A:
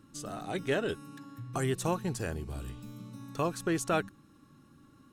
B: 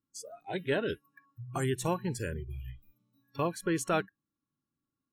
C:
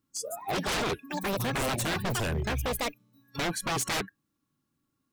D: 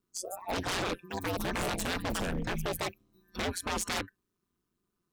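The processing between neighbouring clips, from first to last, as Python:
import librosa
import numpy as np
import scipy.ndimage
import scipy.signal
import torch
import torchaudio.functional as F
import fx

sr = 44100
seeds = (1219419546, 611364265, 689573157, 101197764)

y1 = fx.noise_reduce_blind(x, sr, reduce_db=30)
y2 = fx.echo_pitch(y1, sr, ms=208, semitones=7, count=2, db_per_echo=-6.0)
y2 = 10.0 ** (-33.0 / 20.0) * (np.abs((y2 / 10.0 ** (-33.0 / 20.0) + 3.0) % 4.0 - 2.0) - 1.0)
y2 = y2 * 10.0 ** (9.0 / 20.0)
y3 = y2 * np.sin(2.0 * np.pi * 91.0 * np.arange(len(y2)) / sr)
y3 = fx.doppler_dist(y3, sr, depth_ms=0.11)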